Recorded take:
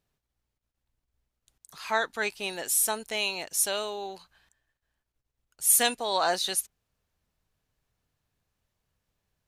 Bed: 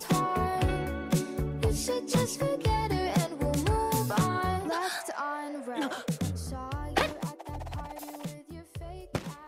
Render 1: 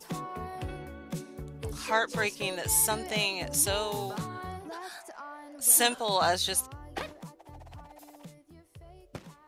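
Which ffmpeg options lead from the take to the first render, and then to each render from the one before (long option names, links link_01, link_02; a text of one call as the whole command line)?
ffmpeg -i in.wav -i bed.wav -filter_complex "[1:a]volume=-10dB[link_01];[0:a][link_01]amix=inputs=2:normalize=0" out.wav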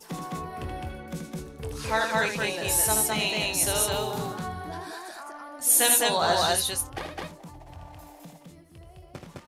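ffmpeg -i in.wav -filter_complex "[0:a]asplit=2[link_01][link_02];[link_02]adelay=23,volume=-10.5dB[link_03];[link_01][link_03]amix=inputs=2:normalize=0,aecho=1:1:78.72|209.9:0.501|0.891" out.wav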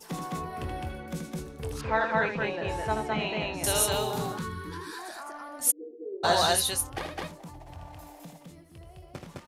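ffmpeg -i in.wav -filter_complex "[0:a]asettb=1/sr,asplit=3[link_01][link_02][link_03];[link_01]atrim=end=1.814[link_04];[link_02]atrim=start=1.81:end=3.64,asetpts=PTS-STARTPTS,afade=type=in:duration=0.004:curve=qsin,afade=type=out:start_time=1.826:duration=0.004:curve=qsin,lowpass=2000[link_05];[link_03]atrim=start=3.636[link_06];[link_04][link_05]acrossfade=duration=0.004:curve1=hsin:curve2=qsin[link_07];[link_07][link_06]acrossfade=duration=0.004:curve1=qsin:curve2=hsin,asettb=1/sr,asplit=3[link_08][link_09][link_10];[link_08]atrim=end=4.384[link_11];[link_09]atrim=start=4.38:end=4.99,asetpts=PTS-STARTPTS,afade=type=in:duration=0.004:curve=qsin,afade=type=out:start_time=0.606:duration=0.004:curve=qsin,asuperstop=centerf=680:order=8:qfactor=2[link_12];[link_10]atrim=start=4.986[link_13];[link_11][link_12]acrossfade=duration=0.004:curve1=hsin:curve2=qsin[link_14];[link_14][link_13]acrossfade=duration=0.004:curve1=qsin:curve2=hsin,asplit=3[link_15][link_16][link_17];[link_15]afade=type=out:start_time=5.7:duration=0.02[link_18];[link_16]asuperpass=centerf=370:order=8:qfactor=2.7,afade=type=in:start_time=5.7:duration=0.02,afade=type=out:start_time=6.23:duration=0.02[link_19];[link_17]afade=type=in:start_time=6.23:duration=0.02[link_20];[link_18][link_19][link_20]amix=inputs=3:normalize=0" out.wav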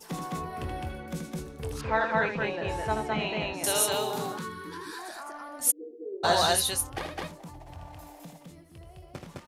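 ffmpeg -i in.wav -filter_complex "[0:a]asettb=1/sr,asplit=3[link_01][link_02][link_03];[link_01]atrim=end=3.534[link_04];[link_02]atrim=start=3.53:end=4.86,asetpts=PTS-STARTPTS,afade=type=in:duration=0.004:curve=qsin,afade=type=out:start_time=1.326:duration=0.004:curve=qsin,highpass=190[link_05];[link_03]atrim=start=4.856[link_06];[link_04][link_05]acrossfade=duration=0.004:curve1=hsin:curve2=qsin[link_07];[link_07][link_06]acrossfade=duration=0.004:curve1=qsin:curve2=hsin" out.wav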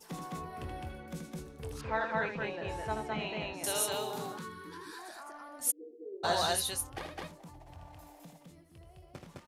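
ffmpeg -i in.wav -af "volume=-6.5dB" out.wav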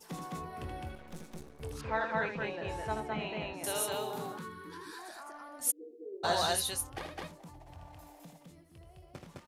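ffmpeg -i in.wav -filter_complex "[0:a]asettb=1/sr,asplit=3[link_01][link_02][link_03];[link_01]atrim=end=0.954[link_04];[link_02]atrim=start=0.95:end=1.61,asetpts=PTS-STARTPTS,afade=type=in:duration=0.004:curve=qsin,afade=type=out:start_time=0.656:duration=0.004:curve=qsin,aeval=exprs='max(val(0),0)':channel_layout=same[link_05];[link_03]atrim=start=1.606[link_06];[link_04][link_05]acrossfade=duration=0.004:curve1=hsin:curve2=qsin[link_07];[link_07][link_06]acrossfade=duration=0.004:curve1=qsin:curve2=hsin,asettb=1/sr,asplit=3[link_08][link_09][link_10];[link_08]atrim=end=3.004[link_11];[link_09]atrim=start=3:end=4.7,asetpts=PTS-STARTPTS,afade=type=in:duration=0.004:curve=qsin,afade=type=out:start_time=1.696:duration=0.004:curve=qsin,equalizer=frequency=5800:width_type=o:width=1.7:gain=-5[link_12];[link_10]atrim=start=4.696[link_13];[link_11][link_12]acrossfade=duration=0.004:curve1=hsin:curve2=qsin[link_14];[link_14][link_13]acrossfade=duration=0.004:curve1=qsin:curve2=hsin" out.wav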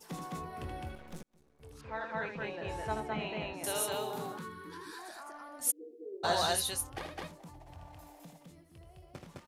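ffmpeg -i in.wav -filter_complex "[0:a]asplit=2[link_01][link_02];[link_01]atrim=end=1.23,asetpts=PTS-STARTPTS,afade=type=out:start_time=1.226:duration=0.004:curve=hsin[link_03];[link_02]atrim=start=1.23,asetpts=PTS-STARTPTS,afade=type=in:duration=1.61[link_04];[link_03][link_04]concat=n=2:v=0:a=1" out.wav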